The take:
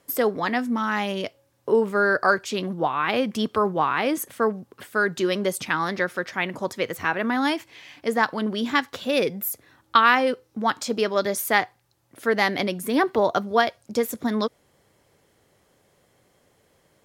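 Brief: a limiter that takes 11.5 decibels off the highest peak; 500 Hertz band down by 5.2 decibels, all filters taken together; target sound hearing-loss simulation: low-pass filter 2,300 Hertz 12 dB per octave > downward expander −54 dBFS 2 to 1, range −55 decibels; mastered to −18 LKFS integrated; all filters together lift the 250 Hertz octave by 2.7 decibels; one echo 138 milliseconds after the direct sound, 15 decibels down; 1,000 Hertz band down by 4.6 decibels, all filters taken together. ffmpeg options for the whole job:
ffmpeg -i in.wav -af "equalizer=frequency=250:width_type=o:gain=5,equalizer=frequency=500:width_type=o:gain=-7,equalizer=frequency=1000:width_type=o:gain=-4,alimiter=limit=-17.5dB:level=0:latency=1,lowpass=2300,aecho=1:1:138:0.178,agate=range=-55dB:threshold=-54dB:ratio=2,volume=10.5dB" out.wav

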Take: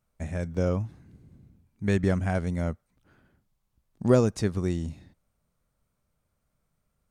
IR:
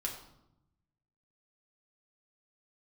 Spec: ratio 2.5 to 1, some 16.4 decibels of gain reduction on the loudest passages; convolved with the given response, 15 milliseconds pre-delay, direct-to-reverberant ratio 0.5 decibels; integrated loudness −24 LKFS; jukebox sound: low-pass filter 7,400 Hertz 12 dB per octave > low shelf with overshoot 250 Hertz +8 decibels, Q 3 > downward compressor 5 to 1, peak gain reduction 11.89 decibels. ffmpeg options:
-filter_complex "[0:a]acompressor=threshold=-40dB:ratio=2.5,asplit=2[link_01][link_02];[1:a]atrim=start_sample=2205,adelay=15[link_03];[link_02][link_03]afir=irnorm=-1:irlink=0,volume=-2dB[link_04];[link_01][link_04]amix=inputs=2:normalize=0,lowpass=7400,lowshelf=frequency=250:width_type=q:width=3:gain=8,acompressor=threshold=-29dB:ratio=5,volume=11dB"

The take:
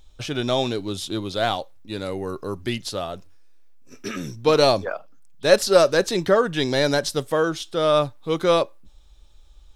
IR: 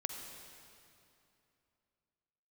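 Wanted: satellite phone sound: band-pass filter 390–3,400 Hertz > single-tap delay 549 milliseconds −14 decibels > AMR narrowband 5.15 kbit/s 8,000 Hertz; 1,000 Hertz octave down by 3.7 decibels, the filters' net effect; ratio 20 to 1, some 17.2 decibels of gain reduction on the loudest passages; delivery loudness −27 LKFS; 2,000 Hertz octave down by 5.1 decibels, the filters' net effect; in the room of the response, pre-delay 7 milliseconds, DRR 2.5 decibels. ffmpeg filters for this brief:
-filter_complex "[0:a]equalizer=frequency=1000:width_type=o:gain=-3.5,equalizer=frequency=2000:width_type=o:gain=-5,acompressor=threshold=-27dB:ratio=20,asplit=2[link_01][link_02];[1:a]atrim=start_sample=2205,adelay=7[link_03];[link_02][link_03]afir=irnorm=-1:irlink=0,volume=-3dB[link_04];[link_01][link_04]amix=inputs=2:normalize=0,highpass=390,lowpass=3400,aecho=1:1:549:0.2,volume=9dB" -ar 8000 -c:a libopencore_amrnb -b:a 5150

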